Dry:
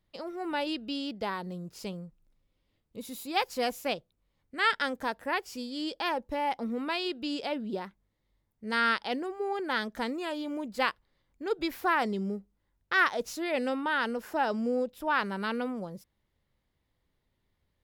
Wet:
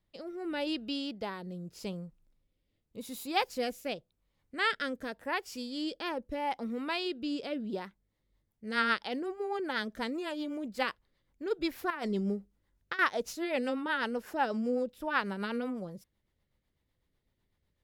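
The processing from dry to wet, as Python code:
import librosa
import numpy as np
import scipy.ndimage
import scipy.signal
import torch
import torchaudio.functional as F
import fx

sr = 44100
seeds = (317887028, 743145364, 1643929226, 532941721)

y = fx.over_compress(x, sr, threshold_db=-32.0, ratio=-1.0, at=(11.9, 12.99))
y = fx.rotary_switch(y, sr, hz=0.85, then_hz=8.0, switch_at_s=7.7)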